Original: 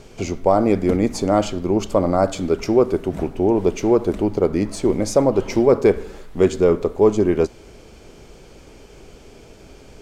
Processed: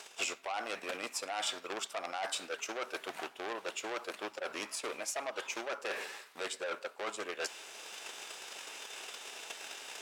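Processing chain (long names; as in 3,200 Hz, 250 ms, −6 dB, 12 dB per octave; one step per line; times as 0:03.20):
transient designer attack +10 dB, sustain −3 dB
high-pass filter 1,100 Hz 12 dB per octave
in parallel at −2 dB: output level in coarse steps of 10 dB
on the sum: brickwall limiter −12 dBFS, peak gain reduction 10.5 dB
formants moved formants +2 semitones
reversed playback
downward compressor 6 to 1, threshold −36 dBFS, peak gain reduction 16.5 dB
reversed playback
dynamic equaliser 2,500 Hz, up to +3 dB, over −52 dBFS, Q 0.77
saturating transformer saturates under 3,400 Hz
level +2.5 dB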